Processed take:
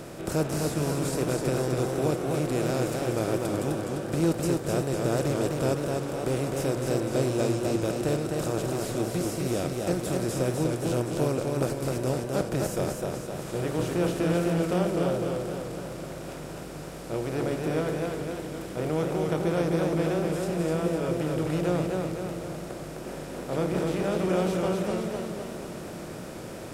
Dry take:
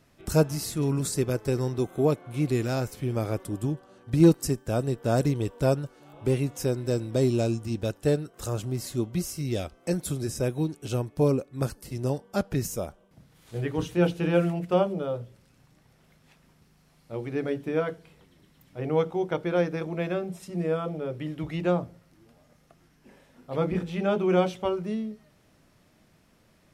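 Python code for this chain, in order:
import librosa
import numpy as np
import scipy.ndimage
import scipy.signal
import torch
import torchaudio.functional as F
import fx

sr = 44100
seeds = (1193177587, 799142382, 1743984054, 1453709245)

y = fx.bin_compress(x, sr, power=0.4)
y = fx.echo_warbled(y, sr, ms=254, feedback_pct=58, rate_hz=2.8, cents=84, wet_db=-3.5)
y = y * librosa.db_to_amplitude(-9.0)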